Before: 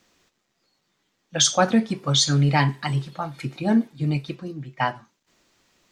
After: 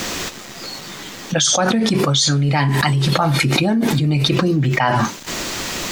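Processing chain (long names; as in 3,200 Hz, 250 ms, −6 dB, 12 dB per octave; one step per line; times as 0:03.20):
high-shelf EQ 8,700 Hz +4 dB
envelope flattener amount 100%
level −1.5 dB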